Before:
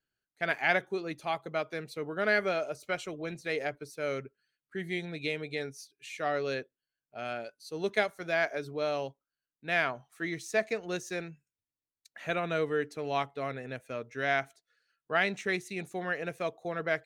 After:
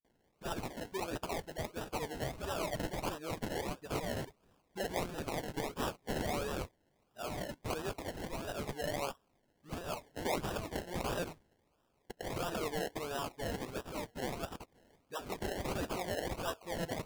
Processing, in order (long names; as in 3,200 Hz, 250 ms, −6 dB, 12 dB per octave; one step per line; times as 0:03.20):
first-order pre-emphasis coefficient 0.97
notch filter 2,400 Hz, Q 5.9
compressor whose output falls as the input rises −48 dBFS, ratio −0.5
brickwall limiter −40.5 dBFS, peak gain reduction 9 dB
all-pass dispersion highs, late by 47 ms, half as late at 470 Hz
sample-and-hold swept by an LFO 29×, swing 60% 1.5 Hz
level +15.5 dB